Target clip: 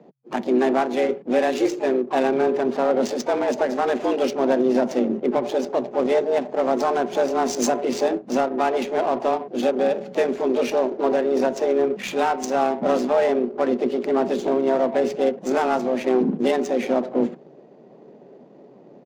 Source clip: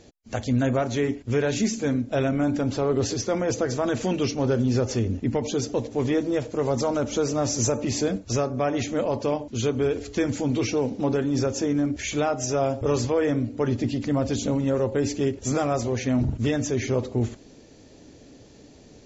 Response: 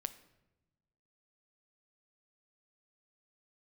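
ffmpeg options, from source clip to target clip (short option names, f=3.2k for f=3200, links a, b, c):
-filter_complex "[0:a]asplit=3[a][b][c];[b]asetrate=33038,aresample=44100,atempo=1.33484,volume=-17dB[d];[c]asetrate=66075,aresample=44100,atempo=0.66742,volume=-12dB[e];[a][d][e]amix=inputs=3:normalize=0,afreqshift=130,adynamicsmooth=sensitivity=4.5:basefreq=1.1k,volume=3dB"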